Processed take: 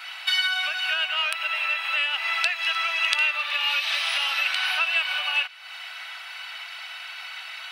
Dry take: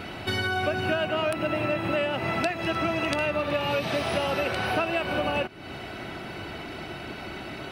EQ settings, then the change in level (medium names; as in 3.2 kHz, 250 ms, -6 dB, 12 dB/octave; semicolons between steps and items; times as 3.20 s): Bessel high-pass 1.5 kHz, order 8; dynamic bell 3.2 kHz, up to +8 dB, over -47 dBFS, Q 0.94; +3.5 dB